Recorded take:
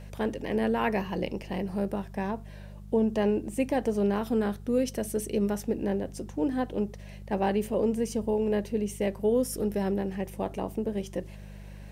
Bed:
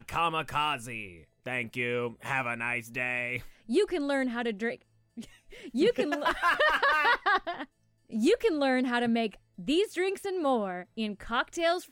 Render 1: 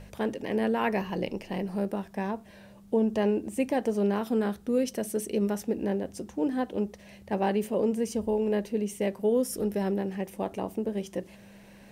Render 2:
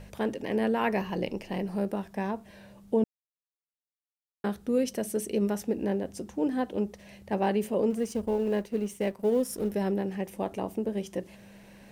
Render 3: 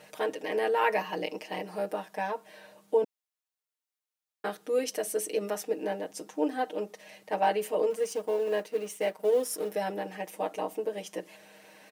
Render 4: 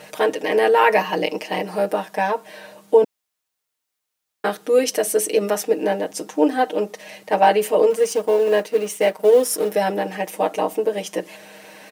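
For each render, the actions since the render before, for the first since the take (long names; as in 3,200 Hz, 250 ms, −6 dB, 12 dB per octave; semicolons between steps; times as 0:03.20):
hum removal 50 Hz, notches 3
0:03.04–0:04.44: silence; 0:07.90–0:09.72: mu-law and A-law mismatch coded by A
high-pass filter 440 Hz 12 dB per octave; comb filter 6.5 ms, depth 99%
level +11.5 dB; brickwall limiter −3 dBFS, peak gain reduction 2 dB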